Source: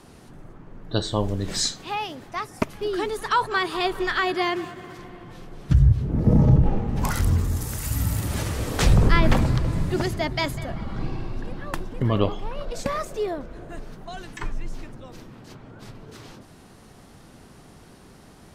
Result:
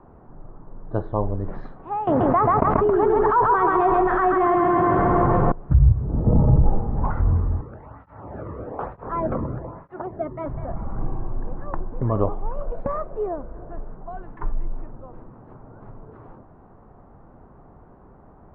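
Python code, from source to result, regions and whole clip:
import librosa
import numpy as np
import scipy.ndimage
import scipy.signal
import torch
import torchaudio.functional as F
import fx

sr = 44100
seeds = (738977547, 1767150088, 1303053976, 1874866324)

y = fx.chain(x, sr, fx.highpass(hz=42.0, slope=12),
    fx.echo_feedback(ms=135, feedback_pct=52, wet_db=-4.5),
    fx.env_flatten(amount_pct=100), at=(2.07, 5.52))
y = fx.chain(y, sr, fx.high_shelf(hz=4900.0, db=-12.0),
    fx.flanger_cancel(hz=1.1, depth_ms=1.4), at=(7.61, 10.46))
y = scipy.signal.sosfilt(scipy.signal.butter(4, 1100.0, 'lowpass', fs=sr, output='sos'), y)
y = fx.peak_eq(y, sr, hz=210.0, db=-8.0, octaves=2.9)
y = y * librosa.db_to_amplitude(5.5)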